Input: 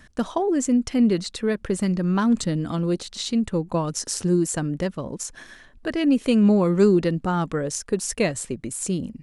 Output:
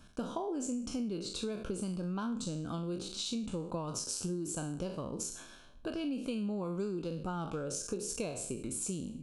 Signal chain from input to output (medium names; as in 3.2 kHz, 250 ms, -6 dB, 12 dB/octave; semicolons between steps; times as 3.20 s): spectral sustain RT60 0.49 s; compression 6:1, threshold -27 dBFS, peak gain reduction 14.5 dB; Butterworth band-stop 1.9 kHz, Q 2.6; trim -7 dB